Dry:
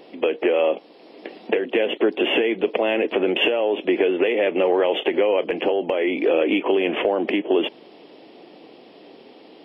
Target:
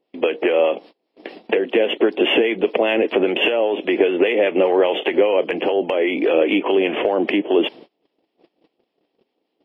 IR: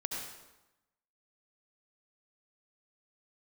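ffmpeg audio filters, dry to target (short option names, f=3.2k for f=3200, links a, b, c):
-filter_complex "[0:a]acrossover=split=820[a][b];[a]aeval=exprs='val(0)*(1-0.5/2+0.5/2*cos(2*PI*5*n/s))':c=same[c];[b]aeval=exprs='val(0)*(1-0.5/2-0.5/2*cos(2*PI*5*n/s))':c=same[d];[c][d]amix=inputs=2:normalize=0,agate=range=-30dB:threshold=-43dB:ratio=16:detection=peak,volume=5dB"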